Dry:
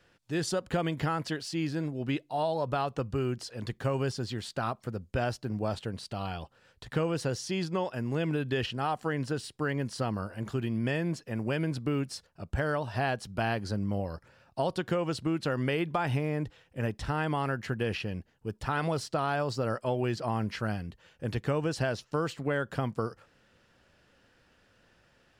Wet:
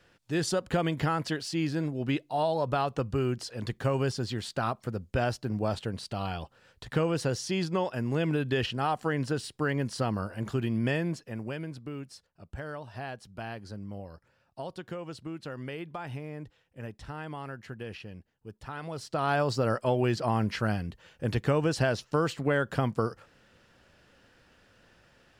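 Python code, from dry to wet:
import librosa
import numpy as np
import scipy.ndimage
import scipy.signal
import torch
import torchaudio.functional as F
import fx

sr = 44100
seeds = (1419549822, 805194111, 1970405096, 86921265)

y = fx.gain(x, sr, db=fx.line((10.92, 2.0), (11.79, -9.0), (18.87, -9.0), (19.31, 3.5)))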